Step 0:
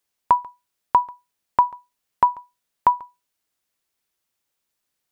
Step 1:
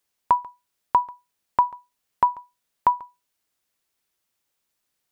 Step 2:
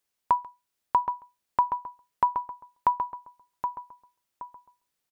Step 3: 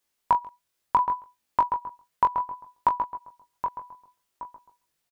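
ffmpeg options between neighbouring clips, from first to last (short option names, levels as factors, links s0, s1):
-af "alimiter=limit=0.376:level=0:latency=1:release=444,volume=1.12"
-filter_complex "[0:a]asplit=2[s0][s1];[s1]adelay=772,lowpass=f=1700:p=1,volume=0.501,asplit=2[s2][s3];[s3]adelay=772,lowpass=f=1700:p=1,volume=0.34,asplit=2[s4][s5];[s5]adelay=772,lowpass=f=1700:p=1,volume=0.34,asplit=2[s6][s7];[s7]adelay=772,lowpass=f=1700:p=1,volume=0.34[s8];[s0][s2][s4][s6][s8]amix=inputs=5:normalize=0,volume=0.631"
-filter_complex "[0:a]flanger=delay=17.5:depth=5.5:speed=0.67,asplit=2[s0][s1];[s1]adelay=21,volume=0.447[s2];[s0][s2]amix=inputs=2:normalize=0,volume=2"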